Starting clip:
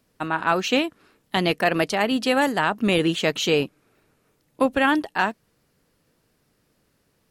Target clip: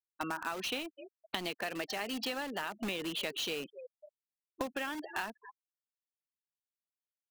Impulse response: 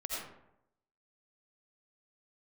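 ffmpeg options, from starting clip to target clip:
-filter_complex "[0:a]acrossover=split=170 4800:gain=0.158 1 0.0794[link_01][link_02][link_03];[link_01][link_02][link_03]amix=inputs=3:normalize=0,asplit=2[link_04][link_05];[link_05]asplit=4[link_06][link_07][link_08][link_09];[link_06]adelay=254,afreqshift=71,volume=-22dB[link_10];[link_07]adelay=508,afreqshift=142,volume=-27.8dB[link_11];[link_08]adelay=762,afreqshift=213,volume=-33.7dB[link_12];[link_09]adelay=1016,afreqshift=284,volume=-39.5dB[link_13];[link_10][link_11][link_12][link_13]amix=inputs=4:normalize=0[link_14];[link_04][link_14]amix=inputs=2:normalize=0,crystalizer=i=3:c=0,highshelf=frequency=5600:gain=8.5,afftfilt=real='re*gte(hypot(re,im),0.0562)':imag='im*gte(hypot(re,im),0.0562)':win_size=1024:overlap=0.75,asplit=2[link_15][link_16];[link_16]aeval=exprs='(mod(10*val(0)+1,2)-1)/10':channel_layout=same,volume=-5.5dB[link_17];[link_15][link_17]amix=inputs=2:normalize=0,acompressor=threshold=-28dB:ratio=10,volume=-5.5dB"

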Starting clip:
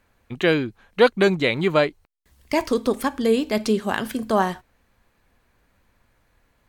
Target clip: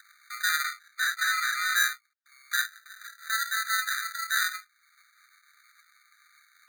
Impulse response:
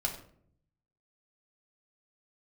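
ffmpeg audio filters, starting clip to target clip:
-filter_complex "[0:a]acrossover=split=100|6600[link_01][link_02][link_03];[link_03]acompressor=threshold=-56dB:ratio=6[link_04];[link_01][link_02][link_04]amix=inputs=3:normalize=0,asettb=1/sr,asplit=3[link_05][link_06][link_07];[link_05]atrim=end=2.614[link_08];[link_06]atrim=start=2.61:end=3.3,asetpts=PTS-STARTPTS,afade=type=in:duration=0.004:curve=qsin,afade=type=out:start_time=0.686:duration=0.004:curve=qsin,aderivative[link_09];[link_07]atrim=start=3.296[link_10];[link_08][link_09]acrossfade=duration=0.004:curve1=hsin:curve2=qsin[link_11];[link_11][link_10]acrossfade=duration=0.004:curve1=qsin:curve2=hsin[link_12];[1:a]atrim=start_sample=2205,atrim=end_sample=3528[link_13];[link_12][link_13]afir=irnorm=-1:irlink=0,asoftclip=type=tanh:threshold=-9.5dB,lowshelf=frequency=220:gain=8.5,acompressor=mode=upward:threshold=-24dB:ratio=2.5,acrusher=samples=40:mix=1:aa=0.000001,asettb=1/sr,asplit=3[link_14][link_15][link_16];[link_14]atrim=end=0.644[link_17];[link_15]atrim=start=0.64:end=1.76,asetpts=PTS-STARTPTS,afade=type=in:duration=0.004:curve=qsin,afade=type=out:start_time=1.116:duration=0.004:curve=qsin,asplit=2[link_18][link_19];[link_19]highpass=frequency=720:poles=1,volume=8dB,asoftclip=type=tanh:threshold=-10.5dB[link_20];[link_18][link_20]amix=inputs=2:normalize=0,lowpass=frequency=7800:poles=1,volume=-6dB[link_21];[link_16]atrim=start=1.756[link_22];[link_17][link_21]acrossfade=duration=0.004:curve1=hsin:curve2=qsin[link_23];[link_23][link_22]acrossfade=duration=0.004:curve1=qsin:curve2=hsin,afftfilt=real='re*eq(mod(floor(b*sr/1024/1200),2),1)':imag='im*eq(mod(floor(b*sr/1024/1200),2),1)':win_size=1024:overlap=0.75"

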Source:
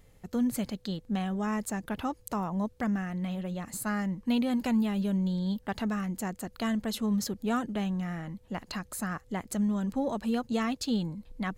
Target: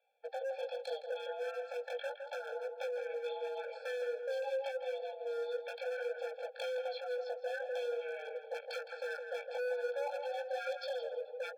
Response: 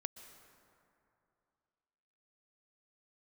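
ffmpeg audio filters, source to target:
-filter_complex "[0:a]agate=range=-16dB:threshold=-53dB:ratio=16:detection=peak,highpass=frequency=150:width_type=q:width=0.5412,highpass=frequency=150:width_type=q:width=1.307,lowpass=frequency=3400:width_type=q:width=0.5176,lowpass=frequency=3400:width_type=q:width=0.7071,lowpass=frequency=3400:width_type=q:width=1.932,afreqshift=290,acompressor=threshold=-36dB:ratio=12,asettb=1/sr,asplit=3[link_01][link_02][link_03];[link_01]atrim=end=9.274[link_04];[link_02]atrim=start=9.27:end=10.84,asetpts=PTS-STARTPTS,afade=type=in:duration=0.004:curve=qsin,afade=type=out:start_time=1.566:duration=0.004:curve=qsin,aeval=exprs='0.0422*(cos(1*acos(clip(val(0)/0.0422,-1,1)))-cos(1*PI/2))+0.00266*(cos(5*acos(clip(val(0)/0.0422,-1,1)))-cos(5*PI/2))':channel_layout=same[link_05];[link_03]atrim=start=10.836[link_06];[link_04][link_05]acrossfade=duration=0.004:curve1=hsin:curve2=qsin[link_07];[link_07][link_06]acrossfade=duration=0.004:curve1=qsin:curve2=hsin,flanger=delay=17.5:depth=3.2:speed=0.79,asoftclip=type=hard:threshold=-39dB,highshelf=frequency=2400:gain=8.5,asplit=2[link_08][link_09];[link_09]adelay=163,lowpass=frequency=1800:poles=1,volume=-5dB,asplit=2[link_10][link_11];[link_11]adelay=163,lowpass=frequency=1800:poles=1,volume=0.34,asplit=2[link_12][link_13];[link_13]adelay=163,lowpass=frequency=1800:poles=1,volume=0.34,asplit=2[link_14][link_15];[link_15]adelay=163,lowpass=frequency=1800:poles=1,volume=0.34[link_16];[link_08][link_10][link_12][link_14][link_16]amix=inputs=5:normalize=0,afftfilt=real='re*eq(mod(floor(b*sr/1024/450),2),1)':imag='im*eq(mod(floor(b*sr/1024/450),2),1)':win_size=1024:overlap=0.75,volume=4dB"

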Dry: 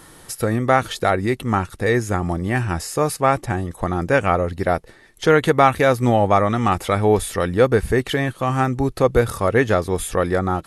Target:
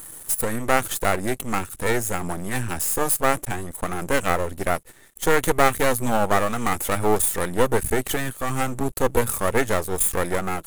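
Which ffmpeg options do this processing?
ffmpeg -i in.wav -af "aeval=exprs='max(val(0),0)':channel_layout=same,aexciter=amount=2.4:drive=9.7:freq=7000" out.wav

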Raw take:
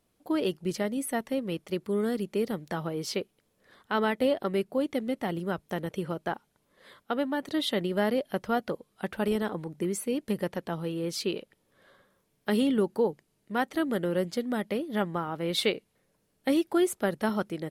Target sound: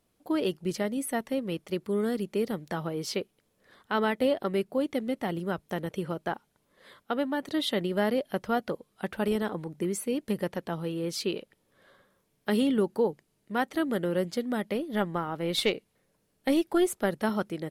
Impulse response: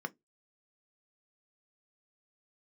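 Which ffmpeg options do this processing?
-filter_complex "[0:a]asettb=1/sr,asplit=3[link_01][link_02][link_03];[link_01]atrim=end=14.754[link_04];[link_02]atrim=start=14.75:end=17.11,asetpts=PTS-STARTPTS,afade=type=in:duration=0.004:curve=qsin,afade=type=out:start_time=2.356:duration=0.004:curve=qsin,aeval=exprs='0.2*(cos(1*acos(clip(val(0)/0.2,-1,1)))-cos(1*PI/2))+0.0224*(cos(2*acos(clip(val(0)/0.2,-1,1)))-cos(2*PI/2))':channel_layout=same[link_05];[link_03]atrim=start=17.106[link_06];[link_04][link_05]acrossfade=duration=0.004:curve1=hsin:curve2=qsin[link_07];[link_07][link_06]acrossfade=duration=0.004:curve1=qsin:curve2=hsin"

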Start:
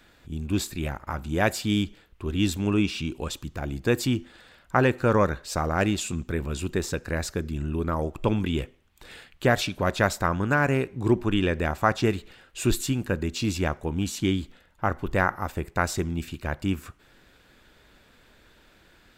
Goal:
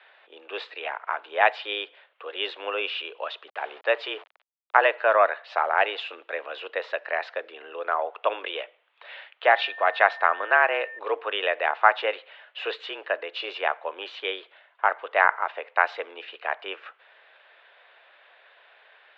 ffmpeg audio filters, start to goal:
ffmpeg -i in.wav -filter_complex "[0:a]asettb=1/sr,asplit=3[link_01][link_02][link_03];[link_01]atrim=end=3.484[link_04];[link_02]atrim=start=3.48:end=4.8,asetpts=PTS-STARTPTS,afade=type=in:duration=0.004:curve=qsin,afade=type=out:start_time=1.316:duration=0.004:curve=qsin,aeval=exprs='val(0)*gte(abs(val(0)),0.00891)':channel_layout=same[link_05];[link_03]atrim=start=4.796[link_06];[link_04][link_05]acrossfade=duration=0.004:curve1=hsin:curve2=qsin[link_07];[link_07][link_06]acrossfade=duration=0.004:curve1=qsin:curve2=hsin,highpass=frequency=480:width_type=q:width=0.5412,highpass=frequency=480:width_type=q:width=1.307,lowpass=frequency=3300:width_type=q:width=0.5176,lowpass=frequency=3300:width_type=q:width=0.7071,lowpass=frequency=3300:width_type=q:width=1.932,afreqshift=96,asettb=1/sr,asplit=3[link_08][link_09][link_10];[link_08]atrim=end=9.514[link_11];[link_09]atrim=start=9.51:end=10.99,asetpts=PTS-STARTPTS,afade=type=in:duration=0.004:curve=qsin,afade=type=out:start_time=1.476:duration=0.004:curve=qsin,aeval=exprs='val(0)+0.00794*sin(2*PI*1800*n/s)':channel_layout=same[link_12];[link_10]atrim=start=10.986[link_13];[link_11][link_12]acrossfade=duration=0.004:curve1=hsin:curve2=qsin[link_14];[link_14][link_13]acrossfade=duration=0.004:curve1=qsin:curve2=hsin,volume=5dB" out.wav

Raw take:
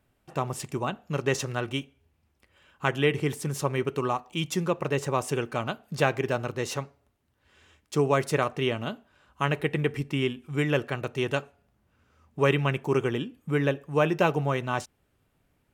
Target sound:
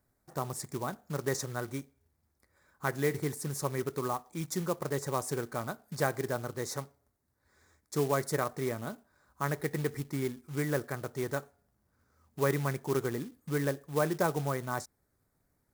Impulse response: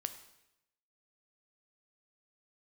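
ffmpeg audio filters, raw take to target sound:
-af "asuperstop=centerf=2900:order=4:qfactor=1.5,acrusher=bits=4:mode=log:mix=0:aa=0.000001,highshelf=frequency=7100:gain=7.5,volume=-6dB"

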